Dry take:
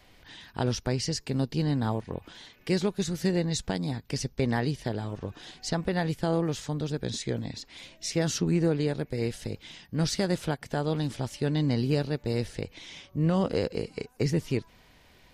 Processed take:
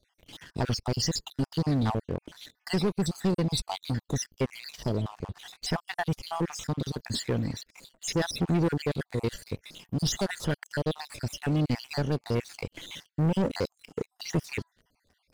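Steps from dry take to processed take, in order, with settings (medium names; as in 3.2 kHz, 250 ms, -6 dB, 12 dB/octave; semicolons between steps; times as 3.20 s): random holes in the spectrogram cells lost 57%; waveshaping leveller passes 3; trim -5 dB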